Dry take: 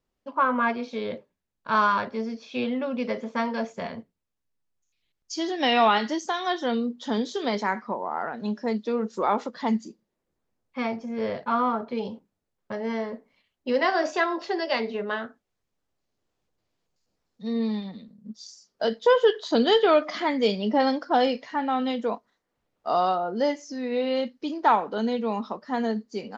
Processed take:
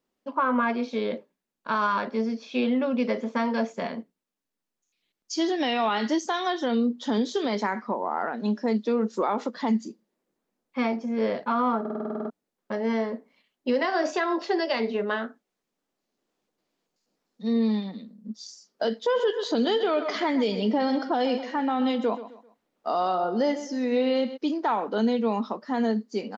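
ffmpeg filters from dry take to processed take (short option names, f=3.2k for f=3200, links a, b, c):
-filter_complex "[0:a]asplit=3[a][b][c];[a]afade=t=out:st=19.14:d=0.02[d];[b]aecho=1:1:130|260|390:0.178|0.0605|0.0206,afade=t=in:st=19.14:d=0.02,afade=t=out:st=24.36:d=0.02[e];[c]afade=t=in:st=24.36:d=0.02[f];[d][e][f]amix=inputs=3:normalize=0,asplit=11[g][h][i][j][k][l][m][n][o][p][q];[g]atrim=end=11.852[r];[h]atrim=start=11.798:end=11.852[s];[i]atrim=start=11.798:end=11.852[t];[j]atrim=start=11.798:end=11.852[u];[k]atrim=start=11.798:end=11.852[v];[l]atrim=start=11.798:end=11.852[w];[m]atrim=start=11.798:end=11.852[x];[n]atrim=start=11.798:end=11.852[y];[o]atrim=start=11.798:end=11.852[z];[p]atrim=start=11.798:end=11.852[aa];[q]atrim=start=12.298[ab];[r][s]acrossfade=d=0.004:c1=hsin:c2=hsin[ac];[ac][t]acrossfade=d=0.004:c1=hsin:c2=hsin[ad];[ad][u]acrossfade=d=0.004:c1=hsin:c2=hsin[ae];[ae][v]acrossfade=d=0.004:c1=hsin:c2=hsin[af];[af][w]acrossfade=d=0.004:c1=hsin:c2=hsin[ag];[ag][x]acrossfade=d=0.004:c1=hsin:c2=hsin[ah];[ah][y]acrossfade=d=0.004:c1=hsin:c2=hsin[ai];[ai][z]acrossfade=d=0.004:c1=hsin:c2=hsin[aj];[aj][aa]acrossfade=d=0.004:c1=hsin:c2=hsin[ak];[ak][ab]acrossfade=d=0.004:c1=hsin:c2=hsin,lowshelf=f=150:t=q:w=1.5:g=-13,alimiter=limit=-17.5dB:level=0:latency=1:release=88,volume=1.5dB"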